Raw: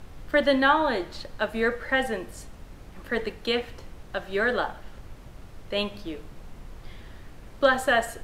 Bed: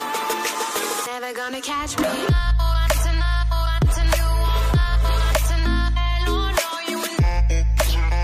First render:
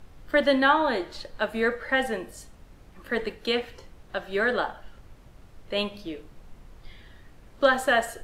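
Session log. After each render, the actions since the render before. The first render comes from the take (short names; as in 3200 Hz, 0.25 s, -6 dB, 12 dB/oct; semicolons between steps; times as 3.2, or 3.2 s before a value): noise print and reduce 6 dB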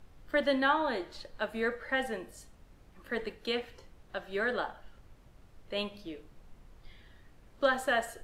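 gain -7 dB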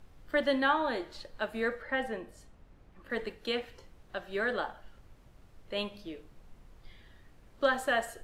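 1.82–3.1 high shelf 4200 Hz -10 dB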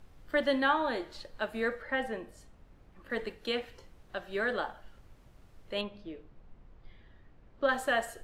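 5.81–7.69 tape spacing loss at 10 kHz 21 dB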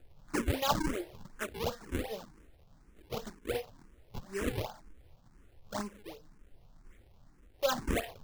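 decimation with a swept rate 40×, swing 160% 2.7 Hz; endless phaser +2 Hz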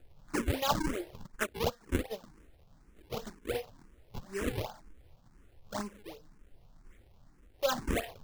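1.06–2.24 transient shaper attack +6 dB, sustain -10 dB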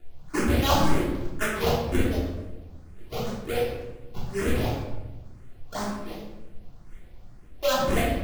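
shoebox room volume 430 m³, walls mixed, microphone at 3.2 m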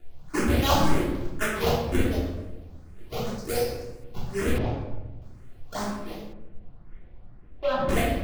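3.38–4.04 resonant high shelf 4100 Hz +7 dB, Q 3; 4.58–5.22 tape spacing loss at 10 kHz 24 dB; 6.33–7.89 air absorption 390 m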